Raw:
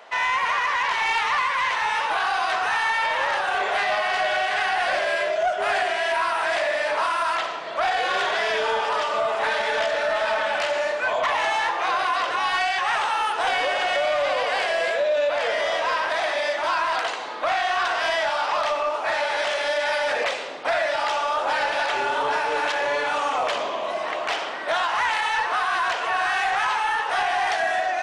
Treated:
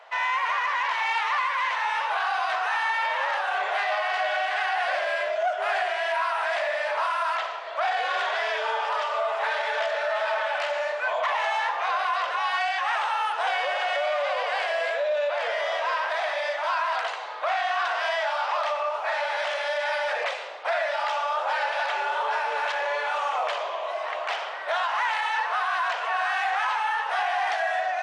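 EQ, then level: high-pass 540 Hz 24 dB/octave; treble shelf 5.3 kHz -10.5 dB; -2.0 dB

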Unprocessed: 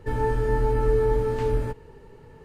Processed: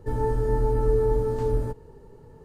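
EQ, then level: peaking EQ 2.4 kHz -12.5 dB 1.5 oct; 0.0 dB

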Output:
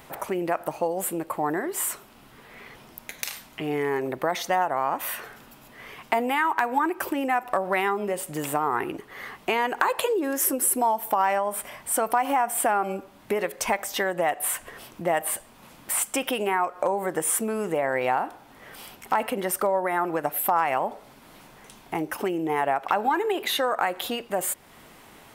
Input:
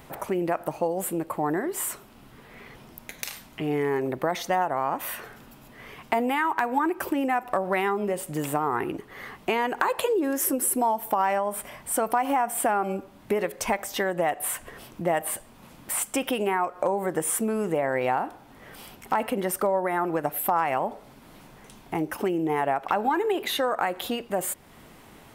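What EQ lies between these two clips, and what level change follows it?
bass shelf 380 Hz -7 dB; +2.5 dB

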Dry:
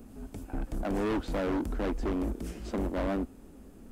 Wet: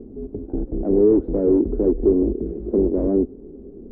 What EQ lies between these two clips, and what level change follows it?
resonant low-pass 400 Hz, resonance Q 4.9; distance through air 86 m; +6.5 dB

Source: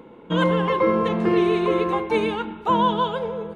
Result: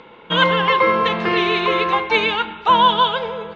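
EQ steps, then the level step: low-pass 4.9 kHz 24 dB/octave; tilt shelf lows -8 dB; peaking EQ 280 Hz -6.5 dB 0.82 oct; +7.0 dB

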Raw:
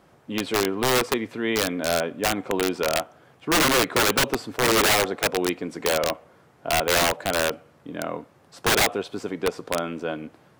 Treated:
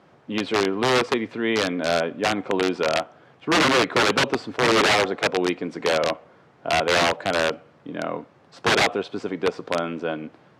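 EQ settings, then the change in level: band-pass 100–4800 Hz; +2.0 dB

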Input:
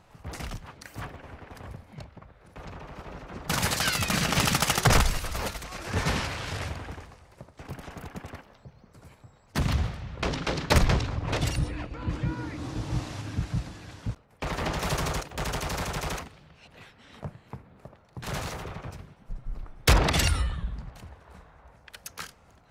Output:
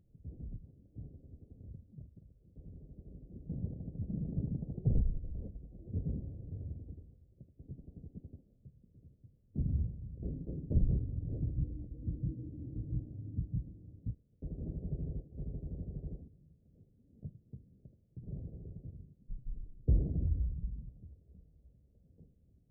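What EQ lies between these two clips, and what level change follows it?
Gaussian low-pass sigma 25 samples; -6.0 dB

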